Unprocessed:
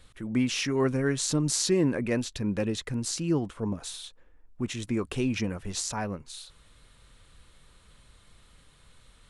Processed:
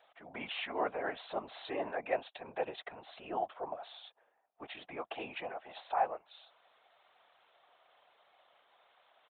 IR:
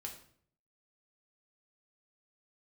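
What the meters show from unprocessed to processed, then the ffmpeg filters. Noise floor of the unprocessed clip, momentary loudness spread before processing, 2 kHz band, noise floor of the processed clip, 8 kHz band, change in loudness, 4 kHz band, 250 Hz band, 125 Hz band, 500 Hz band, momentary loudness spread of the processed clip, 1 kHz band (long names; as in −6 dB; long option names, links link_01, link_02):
−59 dBFS, 11 LU, −6.0 dB, −74 dBFS, below −40 dB, −10.5 dB, −12.0 dB, −21.0 dB, −29.5 dB, −7.5 dB, 15 LU, +4.0 dB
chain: -af "aresample=8000,aresample=44100,highpass=frequency=710:width_type=q:width=8.3,afftfilt=real='hypot(re,im)*cos(2*PI*random(0))':imag='hypot(re,im)*sin(2*PI*random(1))':win_size=512:overlap=0.75,volume=-1dB"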